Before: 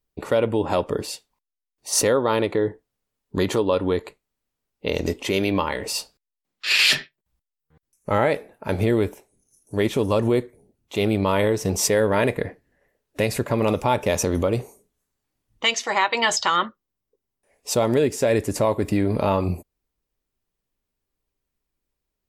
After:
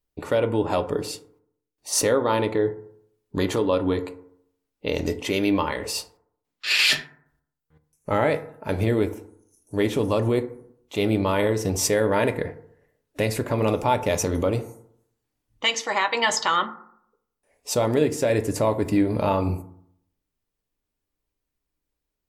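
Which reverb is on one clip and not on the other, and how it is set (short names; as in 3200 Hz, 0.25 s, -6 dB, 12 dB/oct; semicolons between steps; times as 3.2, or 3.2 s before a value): FDN reverb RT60 0.69 s, low-frequency decay 1.05×, high-frequency decay 0.35×, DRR 9 dB; gain -2 dB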